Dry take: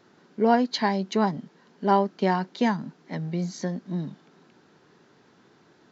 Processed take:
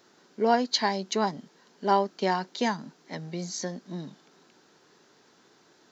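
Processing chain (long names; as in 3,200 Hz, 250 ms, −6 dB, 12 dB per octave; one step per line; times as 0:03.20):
bass and treble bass −8 dB, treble +10 dB
level −1.5 dB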